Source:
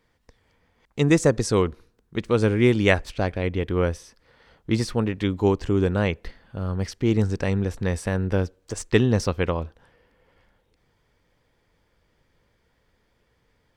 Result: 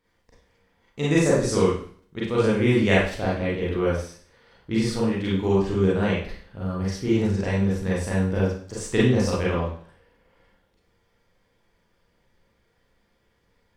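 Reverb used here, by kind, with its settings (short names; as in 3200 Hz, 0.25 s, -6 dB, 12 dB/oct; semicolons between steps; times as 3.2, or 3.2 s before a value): Schroeder reverb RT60 0.5 s, combs from 32 ms, DRR -7 dB; gain -7.5 dB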